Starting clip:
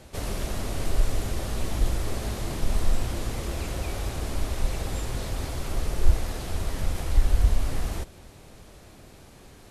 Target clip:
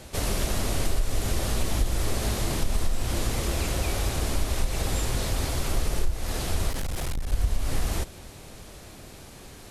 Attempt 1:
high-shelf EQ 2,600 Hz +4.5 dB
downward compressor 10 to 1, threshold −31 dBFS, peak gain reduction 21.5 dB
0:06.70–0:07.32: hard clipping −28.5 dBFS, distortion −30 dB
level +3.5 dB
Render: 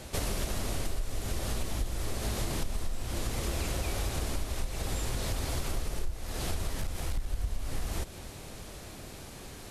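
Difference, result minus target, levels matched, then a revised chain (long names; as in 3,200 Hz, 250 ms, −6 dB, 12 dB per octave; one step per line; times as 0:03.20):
downward compressor: peak gain reduction +8 dB
high-shelf EQ 2,600 Hz +4.5 dB
downward compressor 10 to 1, threshold −22 dBFS, peak gain reduction 13.5 dB
0:06.70–0:07.32: hard clipping −28.5 dBFS, distortion −16 dB
level +3.5 dB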